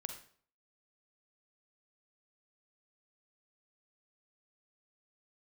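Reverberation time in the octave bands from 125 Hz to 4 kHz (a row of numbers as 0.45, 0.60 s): 0.55, 0.55, 0.55, 0.50, 0.45, 0.45 s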